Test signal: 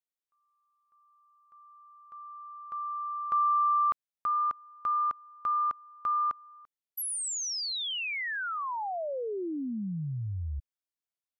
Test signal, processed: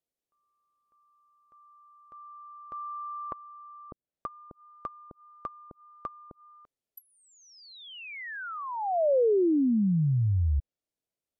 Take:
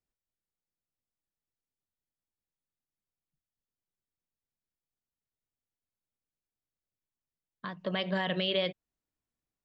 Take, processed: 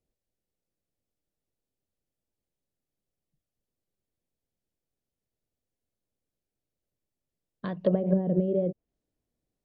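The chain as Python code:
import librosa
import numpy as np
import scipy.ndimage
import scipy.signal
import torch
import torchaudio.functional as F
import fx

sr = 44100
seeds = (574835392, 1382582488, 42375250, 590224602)

y = fx.env_lowpass_down(x, sr, base_hz=370.0, full_db=-27.0)
y = fx.low_shelf_res(y, sr, hz=780.0, db=9.0, q=1.5)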